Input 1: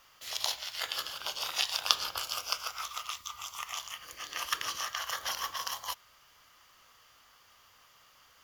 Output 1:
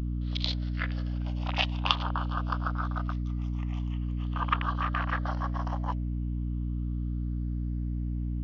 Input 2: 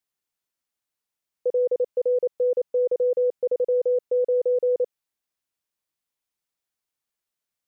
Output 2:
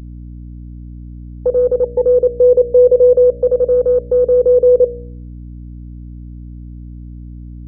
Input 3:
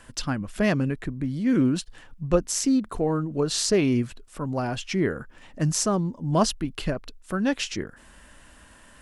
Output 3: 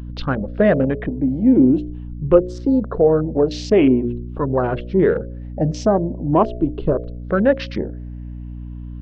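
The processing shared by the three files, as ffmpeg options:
-filter_complex "[0:a]afftfilt=real='re*pow(10,8/40*sin(2*PI*(0.64*log(max(b,1)*sr/1024/100)/log(2)-(0.44)*(pts-256)/sr)))':imag='im*pow(10,8/40*sin(2*PI*(0.64*log(max(b,1)*sr/1024/100)/log(2)-(0.44)*(pts-256)/sr)))':win_size=1024:overlap=0.75,afwtdn=0.02,lowpass=f=4000:w=0.5412,lowpass=f=4000:w=1.3066,equalizer=f=490:t=o:w=1.7:g=11.5,bandreject=f=60.14:t=h:w=4,bandreject=f=120.28:t=h:w=4,bandreject=f=180.42:t=h:w=4,bandreject=f=240.56:t=h:w=4,bandreject=f=300.7:t=h:w=4,bandreject=f=360.84:t=h:w=4,bandreject=f=420.98:t=h:w=4,bandreject=f=481.12:t=h:w=4,bandreject=f=541.26:t=h:w=4,bandreject=f=601.4:t=h:w=4,bandreject=f=661.54:t=h:w=4,aeval=exprs='val(0)+0.0251*(sin(2*PI*60*n/s)+sin(2*PI*2*60*n/s)/2+sin(2*PI*3*60*n/s)/3+sin(2*PI*4*60*n/s)/4+sin(2*PI*5*60*n/s)/5)':c=same,aeval=exprs='1.26*(cos(1*acos(clip(val(0)/1.26,-1,1)))-cos(1*PI/2))+0.0112*(cos(2*acos(clip(val(0)/1.26,-1,1)))-cos(2*PI/2))':c=same,asplit=2[s0][s1];[s1]alimiter=limit=0.316:level=0:latency=1:release=158,volume=1.19[s2];[s0][s2]amix=inputs=2:normalize=0,volume=0.596"

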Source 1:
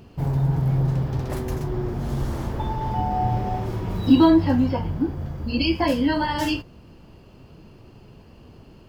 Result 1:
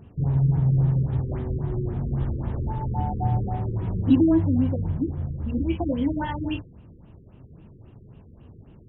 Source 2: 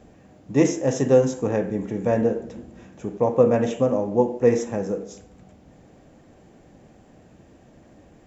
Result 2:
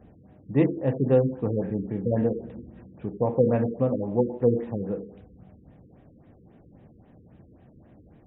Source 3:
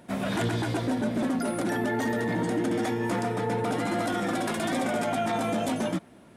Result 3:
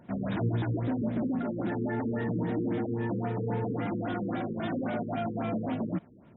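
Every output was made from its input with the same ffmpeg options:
-af "equalizer=f=100:t=o:w=2.2:g=7.5,afftfilt=real='re*lt(b*sr/1024,480*pow(4000/480,0.5+0.5*sin(2*PI*3.7*pts/sr)))':imag='im*lt(b*sr/1024,480*pow(4000/480,0.5+0.5*sin(2*PI*3.7*pts/sr)))':win_size=1024:overlap=0.75,volume=0.531"

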